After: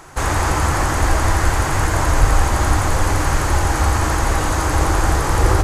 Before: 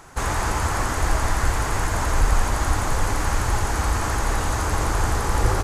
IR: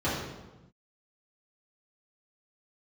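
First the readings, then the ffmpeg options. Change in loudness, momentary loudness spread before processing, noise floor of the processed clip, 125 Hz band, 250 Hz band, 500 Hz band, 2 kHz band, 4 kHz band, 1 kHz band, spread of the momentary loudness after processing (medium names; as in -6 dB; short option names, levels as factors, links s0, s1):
+5.5 dB, 2 LU, -20 dBFS, +6.5 dB, +6.5 dB, +6.0 dB, +5.0 dB, +4.5 dB, +5.5 dB, 2 LU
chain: -filter_complex "[0:a]asplit=2[s0][s1];[1:a]atrim=start_sample=2205[s2];[s1][s2]afir=irnorm=-1:irlink=0,volume=0.106[s3];[s0][s3]amix=inputs=2:normalize=0,volume=1.58"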